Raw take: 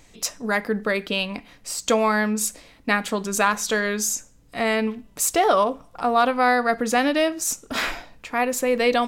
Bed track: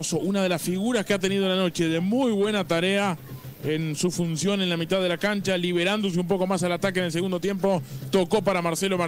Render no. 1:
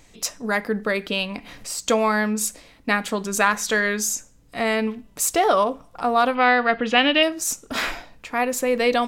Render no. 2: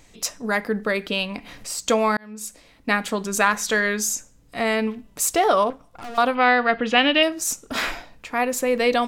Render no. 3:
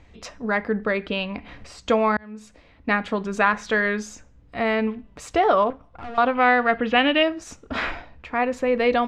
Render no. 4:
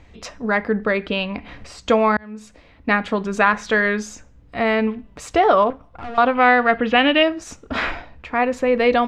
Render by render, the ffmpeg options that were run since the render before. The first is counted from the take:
ffmpeg -i in.wav -filter_complex "[0:a]asettb=1/sr,asplit=3[link_01][link_02][link_03];[link_01]atrim=end=0.974[link_04];[link_02]atrim=start=0.97:end=1.69,asetpts=PTS-STARTPTS,afade=type=in:duration=0.004:curve=qsin,afade=type=out:start_time=0.716:duration=0.004:curve=qsin,acompressor=mode=upward:threshold=-30dB:ratio=2.5:attack=3.2:release=140:knee=2.83:detection=peak[link_05];[link_03]atrim=start=1.686[link_06];[link_04][link_05]acrossfade=duration=0.004:curve1=hsin:curve2=qsin[link_07];[link_07][link_06]acrossfade=duration=0.004:curve1=qsin:curve2=hsin,asettb=1/sr,asplit=3[link_08][link_09][link_10];[link_08]atrim=end=3.404[link_11];[link_09]atrim=start=3.4:end=4,asetpts=PTS-STARTPTS,afade=type=in:duration=0.004:curve=qsin,afade=type=out:start_time=0.596:duration=0.004:curve=qsin,equalizer=frequency=1900:width_type=o:width=0.45:gain=5.5[link_12];[link_10]atrim=start=3.996[link_13];[link_11][link_12]acrossfade=duration=0.004:curve1=hsin:curve2=qsin[link_14];[link_14][link_13]acrossfade=duration=0.004:curve1=qsin:curve2=hsin,asettb=1/sr,asplit=3[link_15][link_16][link_17];[link_15]atrim=end=6.354[link_18];[link_16]atrim=start=6.35:end=7.23,asetpts=PTS-STARTPTS,afade=type=in:duration=0.004:curve=qsin,afade=type=out:start_time=0.876:duration=0.004:curve=qsin,lowpass=frequency=3000:width_type=q:width=5[link_19];[link_17]atrim=start=7.226[link_20];[link_18][link_19]acrossfade=duration=0.004:curve1=hsin:curve2=qsin[link_21];[link_21][link_20]acrossfade=duration=0.004:curve1=qsin:curve2=hsin" out.wav
ffmpeg -i in.wav -filter_complex "[0:a]asettb=1/sr,asplit=3[link_01][link_02][link_03];[link_01]atrim=end=5.704[link_04];[link_02]atrim=start=5.7:end=6.18,asetpts=PTS-STARTPTS,afade=type=in:duration=0.004:curve=qsin,afade=type=out:start_time=0.476:duration=0.004:curve=qsin,aeval=exprs='(tanh(44.7*val(0)+0.75)-tanh(0.75))/44.7':channel_layout=same[link_05];[link_03]atrim=start=6.176[link_06];[link_04][link_05]acrossfade=duration=0.004:curve1=hsin:curve2=qsin[link_07];[link_07][link_06]acrossfade=duration=0.004:curve1=qsin:curve2=hsin,asplit=2[link_08][link_09];[link_08]atrim=end=2.17,asetpts=PTS-STARTPTS,afade=type=out:start_time=2.166:duration=0.004:curve=hsin[link_10];[link_09]atrim=start=2.17,asetpts=PTS-STARTPTS,afade=type=in:duration=0.75[link_11];[link_10][link_11]concat=n=2:v=0:a=1" out.wav
ffmpeg -i in.wav -af "lowpass=2700,equalizer=frequency=73:width=2.6:gain=14.5" out.wav
ffmpeg -i in.wav -af "volume=3.5dB,alimiter=limit=-2dB:level=0:latency=1" out.wav

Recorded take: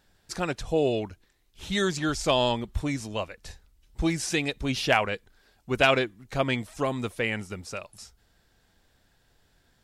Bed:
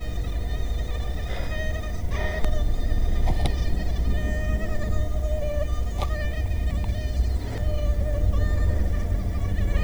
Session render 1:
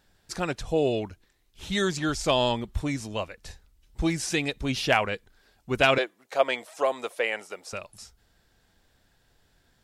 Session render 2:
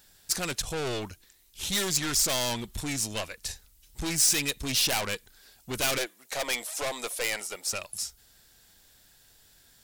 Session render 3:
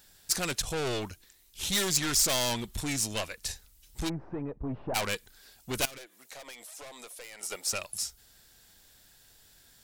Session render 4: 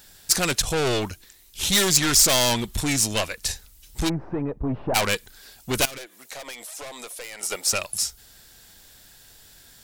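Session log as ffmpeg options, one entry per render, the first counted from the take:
ffmpeg -i in.wav -filter_complex "[0:a]asettb=1/sr,asplit=3[link_01][link_02][link_03];[link_01]atrim=end=5.984[link_04];[link_02]atrim=start=5.98:end=7.73,asetpts=PTS-STARTPTS,afade=type=in:duration=0.004:curve=qsin,afade=type=out:start_time=1.746:duration=0.004:curve=qsin,highpass=frequency=570:width_type=q:width=1.9[link_05];[link_03]atrim=start=7.726[link_06];[link_04][link_05]acrossfade=duration=0.004:curve1=hsin:curve2=qsin[link_07];[link_07][link_06]acrossfade=duration=0.004:curve1=qsin:curve2=hsin" out.wav
ffmpeg -i in.wav -af "aeval=exprs='(tanh(31.6*val(0)+0.35)-tanh(0.35))/31.6':channel_layout=same,crystalizer=i=5:c=0" out.wav
ffmpeg -i in.wav -filter_complex "[0:a]asplit=3[link_01][link_02][link_03];[link_01]afade=type=out:start_time=4.08:duration=0.02[link_04];[link_02]lowpass=frequency=1000:width=0.5412,lowpass=frequency=1000:width=1.3066,afade=type=in:start_time=4.08:duration=0.02,afade=type=out:start_time=4.94:duration=0.02[link_05];[link_03]afade=type=in:start_time=4.94:duration=0.02[link_06];[link_04][link_05][link_06]amix=inputs=3:normalize=0,asettb=1/sr,asplit=3[link_07][link_08][link_09];[link_07]atrim=end=5.854[link_10];[link_08]atrim=start=5.85:end=7.43,asetpts=PTS-STARTPTS,afade=type=in:duration=0.004:curve=qsin,afade=type=out:start_time=1.576:duration=0.004:curve=qsin,acompressor=threshold=-45dB:ratio=4:attack=3.2:release=140:knee=1:detection=peak[link_11];[link_09]atrim=start=7.426[link_12];[link_10][link_11]acrossfade=duration=0.004:curve1=hsin:curve2=qsin[link_13];[link_13][link_12]acrossfade=duration=0.004:curve1=qsin:curve2=hsin" out.wav
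ffmpeg -i in.wav -af "volume=8.5dB,alimiter=limit=-3dB:level=0:latency=1" out.wav

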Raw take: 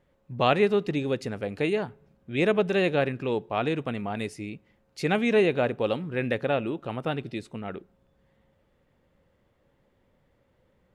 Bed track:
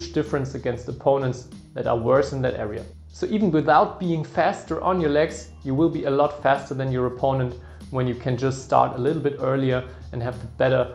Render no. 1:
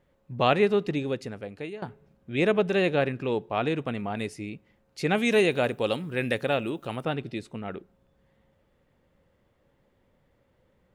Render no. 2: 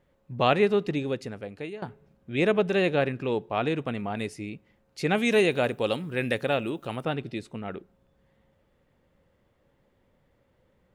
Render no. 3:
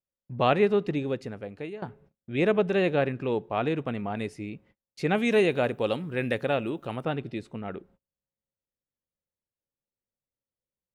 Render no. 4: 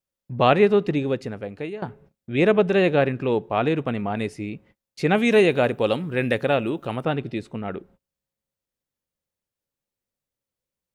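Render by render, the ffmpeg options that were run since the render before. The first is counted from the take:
ffmpeg -i in.wav -filter_complex "[0:a]asplit=3[link_01][link_02][link_03];[link_01]afade=type=out:start_time=5.16:duration=0.02[link_04];[link_02]aemphasis=mode=production:type=75fm,afade=type=in:start_time=5.16:duration=0.02,afade=type=out:start_time=7.02:duration=0.02[link_05];[link_03]afade=type=in:start_time=7.02:duration=0.02[link_06];[link_04][link_05][link_06]amix=inputs=3:normalize=0,asplit=2[link_07][link_08];[link_07]atrim=end=1.82,asetpts=PTS-STARTPTS,afade=type=out:start_time=0.87:duration=0.95:silence=0.16788[link_09];[link_08]atrim=start=1.82,asetpts=PTS-STARTPTS,afade=type=in:duration=0.004:curve=hsin:silence=0.16788[link_10];[link_09][link_10]concat=n=2:v=0:a=1" out.wav
ffmpeg -i in.wav -af anull out.wav
ffmpeg -i in.wav -af "agate=range=-32dB:threshold=-56dB:ratio=16:detection=peak,highshelf=frequency=3300:gain=-7.5" out.wav
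ffmpeg -i in.wav -af "volume=5.5dB" out.wav

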